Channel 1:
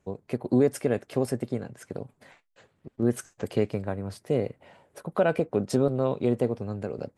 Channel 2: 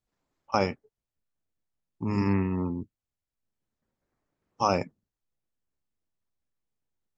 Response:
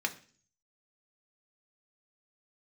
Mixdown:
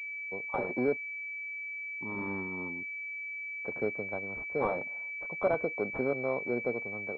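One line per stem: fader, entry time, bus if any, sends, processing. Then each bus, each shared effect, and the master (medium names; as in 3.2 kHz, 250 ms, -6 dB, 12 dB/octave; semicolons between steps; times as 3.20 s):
+1.0 dB, 0.25 s, muted 0.97–3.64 s, no send, none
-0.5 dB, 0.00 s, no send, overload inside the chain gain 19 dB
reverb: none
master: expander -53 dBFS; high-pass 910 Hz 6 dB/octave; class-D stage that switches slowly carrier 2.3 kHz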